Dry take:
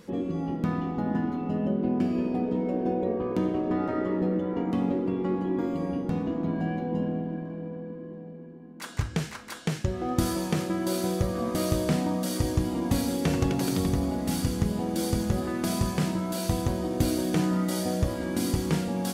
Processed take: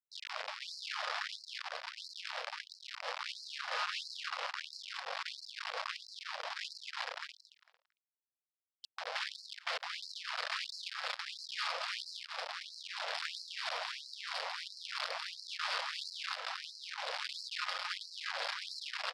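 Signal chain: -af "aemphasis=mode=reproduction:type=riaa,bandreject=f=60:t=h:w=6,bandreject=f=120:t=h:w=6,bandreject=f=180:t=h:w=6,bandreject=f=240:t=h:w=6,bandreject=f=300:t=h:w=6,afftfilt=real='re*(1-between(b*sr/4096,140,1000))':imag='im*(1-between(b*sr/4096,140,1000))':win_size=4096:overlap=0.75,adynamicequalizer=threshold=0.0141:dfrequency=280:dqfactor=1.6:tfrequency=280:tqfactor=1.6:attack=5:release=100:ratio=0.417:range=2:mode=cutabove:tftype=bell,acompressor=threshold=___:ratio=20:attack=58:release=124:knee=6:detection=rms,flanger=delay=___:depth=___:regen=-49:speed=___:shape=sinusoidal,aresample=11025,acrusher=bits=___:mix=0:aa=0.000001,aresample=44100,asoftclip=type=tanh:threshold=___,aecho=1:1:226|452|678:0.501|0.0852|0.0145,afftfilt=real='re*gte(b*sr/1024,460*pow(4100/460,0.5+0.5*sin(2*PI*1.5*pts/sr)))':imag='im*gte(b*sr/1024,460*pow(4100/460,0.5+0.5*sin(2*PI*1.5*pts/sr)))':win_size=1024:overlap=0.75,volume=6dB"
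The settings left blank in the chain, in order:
-25dB, 9.5, 4.2, 0.46, 5, -29dB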